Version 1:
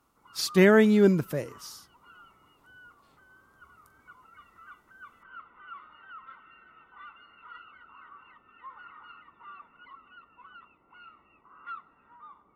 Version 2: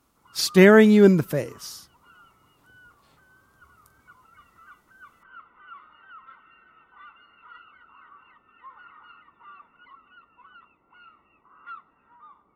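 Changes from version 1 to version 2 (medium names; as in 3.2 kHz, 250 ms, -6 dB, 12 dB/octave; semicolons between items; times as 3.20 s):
speech +5.5 dB; reverb: off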